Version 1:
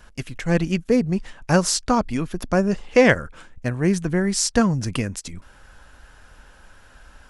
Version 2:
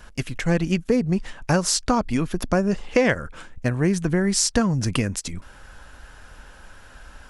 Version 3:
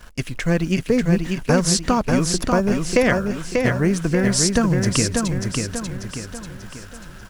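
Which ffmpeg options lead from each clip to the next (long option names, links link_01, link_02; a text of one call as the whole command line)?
ffmpeg -i in.wav -af "acompressor=threshold=-21dB:ratio=3,volume=3.5dB" out.wav
ffmpeg -i in.wav -filter_complex "[0:a]bandreject=frequency=820:width=12,asplit=2[link_01][link_02];[link_02]acrusher=bits=6:mix=0:aa=0.000001,volume=-6dB[link_03];[link_01][link_03]amix=inputs=2:normalize=0,aecho=1:1:590|1180|1770|2360|2950|3540:0.631|0.284|0.128|0.0575|0.0259|0.0116,volume=-2dB" out.wav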